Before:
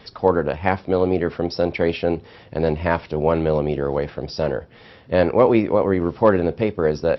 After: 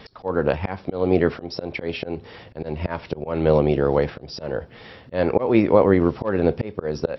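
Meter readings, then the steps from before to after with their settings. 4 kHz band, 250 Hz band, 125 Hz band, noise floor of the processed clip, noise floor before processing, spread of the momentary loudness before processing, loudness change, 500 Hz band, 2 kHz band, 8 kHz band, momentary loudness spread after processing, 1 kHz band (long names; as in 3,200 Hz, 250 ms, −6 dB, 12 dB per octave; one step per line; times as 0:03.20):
−1.5 dB, −0.5 dB, −0.5 dB, −46 dBFS, −47 dBFS, 8 LU, −1.5 dB, −2.0 dB, −3.0 dB, can't be measured, 15 LU, −4.5 dB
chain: volume swells 256 ms
level +3 dB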